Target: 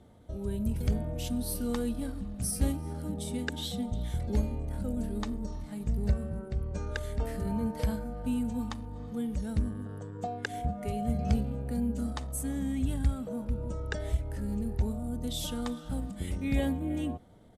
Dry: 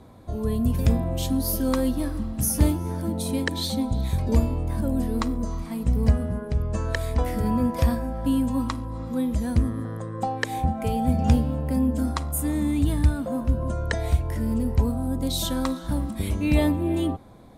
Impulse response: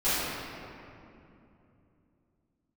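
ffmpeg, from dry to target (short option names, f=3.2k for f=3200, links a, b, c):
-af "asetrate=40440,aresample=44100,atempo=1.09051,bandreject=f=1k:w=6.1,volume=-8dB"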